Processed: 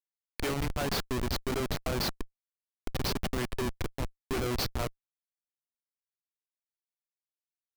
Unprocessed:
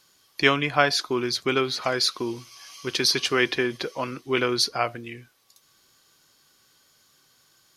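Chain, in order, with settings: 2.21–3.58 power-law curve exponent 1.4; Schmitt trigger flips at -22.5 dBFS; gain -2 dB

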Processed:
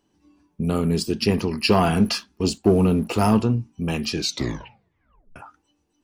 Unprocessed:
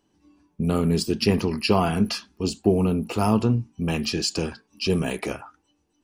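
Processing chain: 1.62–3.41 sample leveller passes 1; 4.15 tape stop 1.21 s

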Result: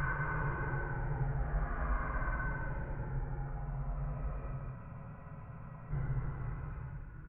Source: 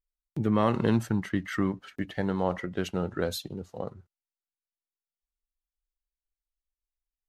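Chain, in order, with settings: median filter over 41 samples; level quantiser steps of 16 dB; limiter -30.5 dBFS, peak gain reduction 10 dB; compressor, threshold -42 dBFS, peak gain reduction 8 dB; one-sided clip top -38 dBFS; mistuned SSB -330 Hz 190–2300 Hz; loudspeakers at several distances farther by 16 m -5 dB, 60 m -3 dB; Paulstretch 13×, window 0.10 s, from 1.55; spectral freeze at 4.79, 1.13 s; gain +12 dB

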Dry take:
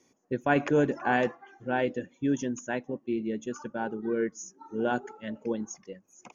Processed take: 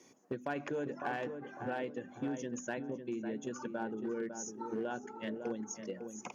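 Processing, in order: notches 50/100/150/200/250/300 Hz; compressor 5:1, threshold -42 dBFS, peak gain reduction 19.5 dB; darkening echo 0.553 s, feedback 37%, low-pass 1500 Hz, level -7 dB; one-sided clip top -36.5 dBFS, bottom -30.5 dBFS; HPF 110 Hz; gain +5 dB

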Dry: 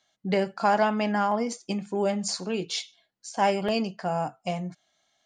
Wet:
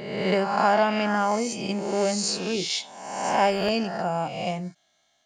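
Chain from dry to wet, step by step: spectral swells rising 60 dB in 1.13 s; ending taper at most 430 dB/s

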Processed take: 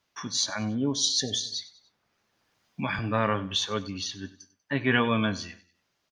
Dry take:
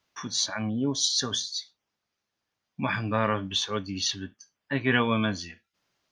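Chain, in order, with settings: wow and flutter 20 cents; 1.09–1.52 spectral delete 790–1700 Hz; 3.83–4.24 compressor, threshold -31 dBFS, peak gain reduction 7.5 dB; on a send: feedback echo 96 ms, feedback 40%, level -18.5 dB; 1.45–2.99 on the sum: three-band squash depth 40%

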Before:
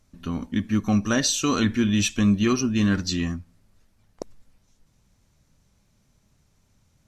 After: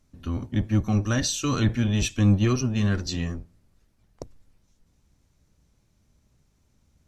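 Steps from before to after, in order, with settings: octaver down 1 oct, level +2 dB; gain -4 dB

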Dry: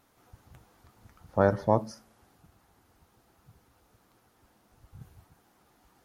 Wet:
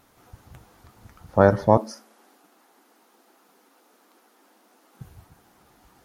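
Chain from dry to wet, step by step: 1.77–5.01 steep high-pass 230 Hz 48 dB/oct; gain +7 dB

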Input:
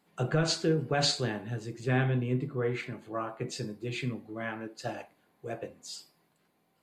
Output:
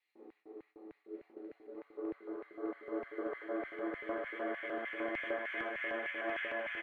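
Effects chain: in parallel at 0 dB: compressor 5:1, threshold -43 dBFS, peak gain reduction 18 dB; on the sum: Paulstretch 33×, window 0.25 s, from 4.24; weighting filter A; limiter -31 dBFS, peak gain reduction 7.5 dB; LFO high-pass square 3.3 Hz 380–2100 Hz; high shelf 6200 Hz -7.5 dB; gate with hold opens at -54 dBFS; spectral repair 1.09–1.73, 650–1300 Hz before; on a send: echo 1.143 s -5 dB; on the sum: three-band expander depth 70%; gain -2 dB

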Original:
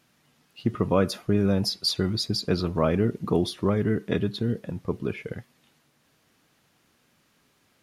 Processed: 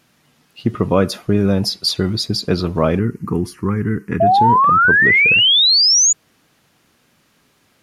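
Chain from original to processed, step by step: 2.99–4.27 fixed phaser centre 1500 Hz, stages 4; 4.2–6.13 painted sound rise 650–7000 Hz -19 dBFS; gain +7 dB

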